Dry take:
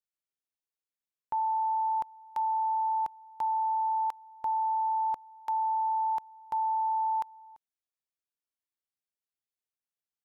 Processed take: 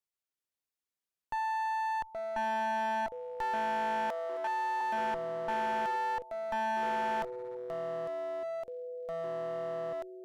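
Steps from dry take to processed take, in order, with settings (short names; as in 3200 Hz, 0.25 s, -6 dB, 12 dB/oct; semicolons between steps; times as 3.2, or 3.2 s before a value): echoes that change speed 0.382 s, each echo -5 st, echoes 3, each echo -6 dB; one-sided clip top -36.5 dBFS, bottom -23 dBFS; 4.1–4.81 steep high-pass 290 Hz 48 dB/oct; gain -1 dB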